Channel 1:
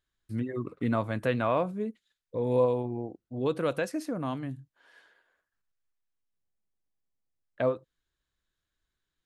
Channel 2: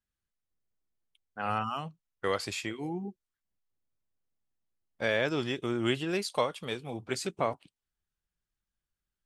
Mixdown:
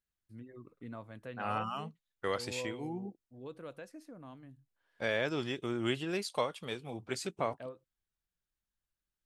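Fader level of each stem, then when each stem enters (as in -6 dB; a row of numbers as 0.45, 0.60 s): -17.5, -4.0 dB; 0.00, 0.00 s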